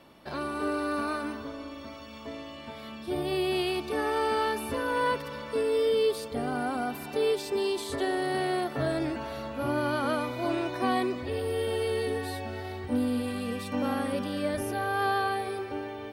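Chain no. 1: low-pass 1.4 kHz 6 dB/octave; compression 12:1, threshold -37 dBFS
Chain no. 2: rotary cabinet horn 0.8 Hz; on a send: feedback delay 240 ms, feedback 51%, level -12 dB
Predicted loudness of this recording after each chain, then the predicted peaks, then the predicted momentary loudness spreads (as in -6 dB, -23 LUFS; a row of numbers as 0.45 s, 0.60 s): -41.5 LUFS, -32.0 LUFS; -28.0 dBFS, -15.0 dBFS; 3 LU, 12 LU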